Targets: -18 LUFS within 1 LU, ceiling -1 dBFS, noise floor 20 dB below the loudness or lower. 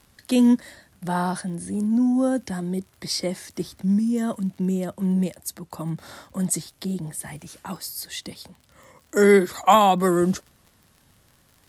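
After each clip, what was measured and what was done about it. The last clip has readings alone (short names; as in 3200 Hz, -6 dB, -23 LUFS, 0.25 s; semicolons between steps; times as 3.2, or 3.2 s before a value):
ticks 43/s; loudness -23.0 LUFS; peak -3.5 dBFS; loudness target -18.0 LUFS
-> de-click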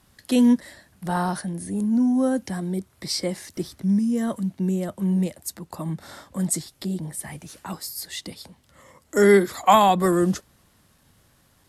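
ticks 0/s; loudness -23.0 LUFS; peak -3.5 dBFS; loudness target -18.0 LUFS
-> gain +5 dB; limiter -1 dBFS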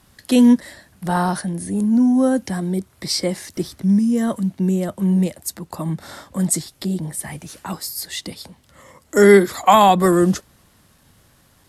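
loudness -18.5 LUFS; peak -1.0 dBFS; noise floor -56 dBFS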